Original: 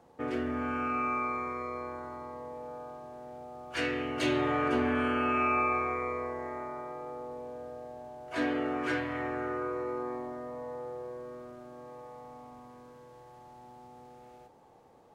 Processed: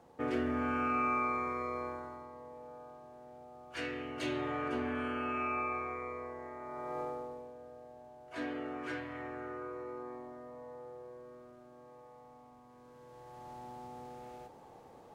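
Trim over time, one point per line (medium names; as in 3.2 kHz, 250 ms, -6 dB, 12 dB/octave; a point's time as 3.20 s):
1.87 s -0.5 dB
2.30 s -7.5 dB
6.59 s -7.5 dB
7.00 s +3.5 dB
7.54 s -8.5 dB
12.64 s -8.5 dB
13.51 s +4 dB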